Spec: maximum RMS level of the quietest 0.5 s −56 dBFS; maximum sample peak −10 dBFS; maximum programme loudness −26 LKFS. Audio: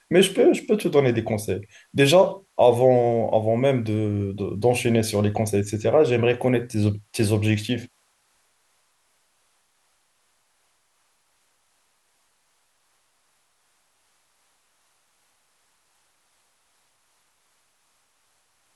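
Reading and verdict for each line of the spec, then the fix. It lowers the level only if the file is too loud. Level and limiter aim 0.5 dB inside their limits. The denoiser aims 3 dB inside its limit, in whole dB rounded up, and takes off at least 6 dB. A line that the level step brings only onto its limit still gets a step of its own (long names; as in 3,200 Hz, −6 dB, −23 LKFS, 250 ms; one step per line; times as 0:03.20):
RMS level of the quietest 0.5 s −67 dBFS: in spec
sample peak −5.0 dBFS: out of spec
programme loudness −21.5 LKFS: out of spec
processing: level −5 dB
brickwall limiter −10.5 dBFS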